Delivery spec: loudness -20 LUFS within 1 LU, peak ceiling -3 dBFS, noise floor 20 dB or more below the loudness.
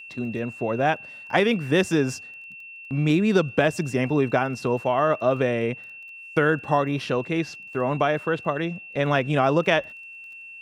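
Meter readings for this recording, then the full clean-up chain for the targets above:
tick rate 19 per s; steady tone 2.7 kHz; tone level -39 dBFS; loudness -23.5 LUFS; peak level -4.5 dBFS; loudness target -20.0 LUFS
-> de-click; band-stop 2.7 kHz, Q 30; trim +3.5 dB; peak limiter -3 dBFS

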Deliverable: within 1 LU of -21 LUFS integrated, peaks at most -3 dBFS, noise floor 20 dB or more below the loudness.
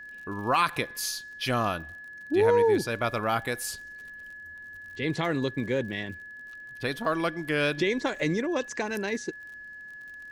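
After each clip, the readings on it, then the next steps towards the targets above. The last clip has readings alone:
tick rate 47 per s; steady tone 1.7 kHz; tone level -41 dBFS; loudness -28.0 LUFS; peak level -11.5 dBFS; loudness target -21.0 LUFS
-> de-click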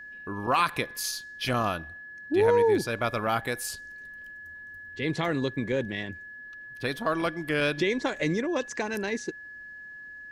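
tick rate 0.19 per s; steady tone 1.7 kHz; tone level -41 dBFS
-> band-stop 1.7 kHz, Q 30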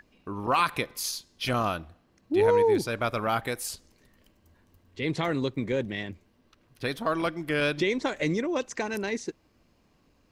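steady tone not found; loudness -28.0 LUFS; peak level -12.0 dBFS; loudness target -21.0 LUFS
-> trim +7 dB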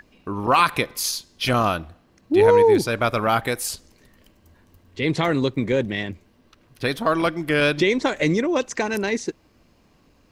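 loudness -21.0 LUFS; peak level -5.0 dBFS; noise floor -59 dBFS

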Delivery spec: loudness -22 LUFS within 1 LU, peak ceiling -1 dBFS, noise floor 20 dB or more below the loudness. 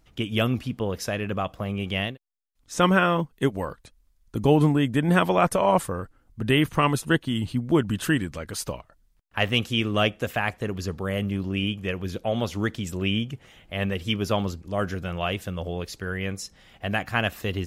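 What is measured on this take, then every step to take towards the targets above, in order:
loudness -25.5 LUFS; peak level -5.5 dBFS; loudness target -22.0 LUFS
-> trim +3.5 dB

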